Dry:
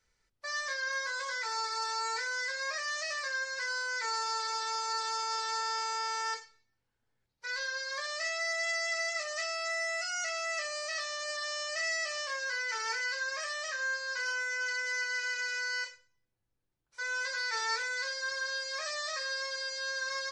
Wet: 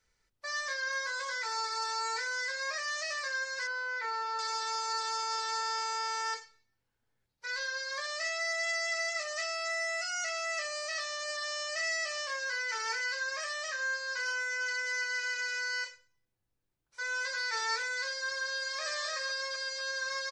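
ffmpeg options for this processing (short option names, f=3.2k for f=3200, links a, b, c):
-filter_complex "[0:a]asettb=1/sr,asplit=3[a][b][c];[a]atrim=end=3.674[d];[b]atrim=start=3.67:end=4.39,asetpts=PTS-STARTPTS,afade=t=in:d=0.004:c=qsin,afade=t=out:st=0.716:d=0.004:c=qsin,lowpass=2.8k[e];[c]atrim=start=4.386[f];[d][e]acrossfade=d=0.004:c1=hsin:c2=qsin[g];[g][f]acrossfade=d=0.004:c1=qsin:c2=hsin,asplit=2[h][i];[i]afade=t=in:st=18.36:d=0.01,afade=t=out:st=18.81:d=0.01,aecho=0:1:250|500|750|1000|1250|1500|1750|2000|2250|2500|2750:0.473151|0.331206|0.231844|0.162291|0.113604|0.0795225|0.0556658|0.038966|0.0272762|0.0190934|0.0133654[j];[h][j]amix=inputs=2:normalize=0"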